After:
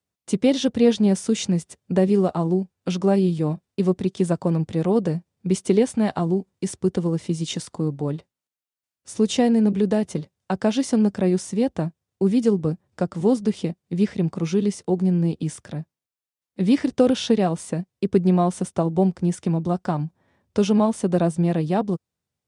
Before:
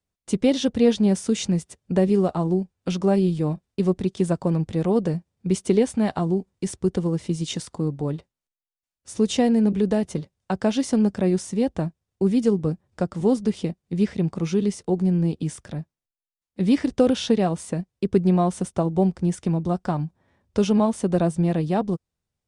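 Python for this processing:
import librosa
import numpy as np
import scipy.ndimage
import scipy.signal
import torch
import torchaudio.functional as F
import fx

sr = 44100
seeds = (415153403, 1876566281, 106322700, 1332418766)

y = scipy.signal.sosfilt(scipy.signal.butter(2, 91.0, 'highpass', fs=sr, output='sos'), x)
y = F.gain(torch.from_numpy(y), 1.0).numpy()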